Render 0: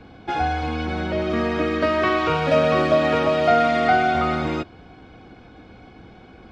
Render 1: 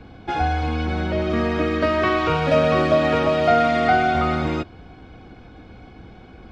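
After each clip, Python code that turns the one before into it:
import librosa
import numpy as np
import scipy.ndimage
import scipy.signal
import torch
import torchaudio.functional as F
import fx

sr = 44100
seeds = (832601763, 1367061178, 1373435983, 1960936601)

y = fx.low_shelf(x, sr, hz=100.0, db=8.0)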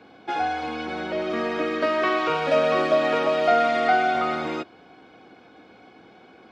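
y = scipy.signal.sosfilt(scipy.signal.butter(2, 310.0, 'highpass', fs=sr, output='sos'), x)
y = y * 10.0 ** (-2.0 / 20.0)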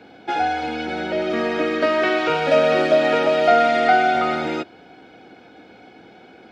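y = fx.notch(x, sr, hz=1100.0, q=5.3)
y = y * 10.0 ** (4.5 / 20.0)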